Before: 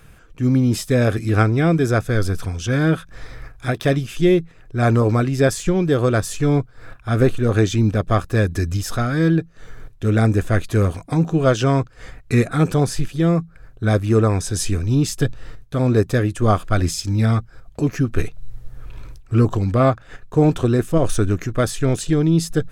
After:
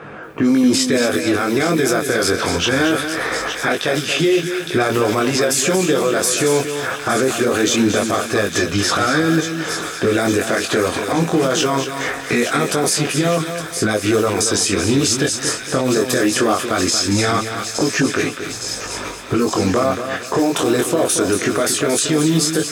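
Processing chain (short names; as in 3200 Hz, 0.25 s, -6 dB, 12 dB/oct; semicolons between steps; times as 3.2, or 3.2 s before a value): block floating point 7-bit; HPF 330 Hz 12 dB/oct; low-pass opened by the level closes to 1200 Hz, open at -18.5 dBFS; high shelf 4300 Hz +8 dB; compressor 3:1, threshold -37 dBFS, peak gain reduction 18.5 dB; chorus 0.22 Hz, delay 19 ms, depth 4 ms; thin delay 0.862 s, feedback 75%, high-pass 2200 Hz, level -10 dB; maximiser +33 dB; lo-fi delay 0.23 s, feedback 35%, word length 7-bit, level -8.5 dB; gain -7 dB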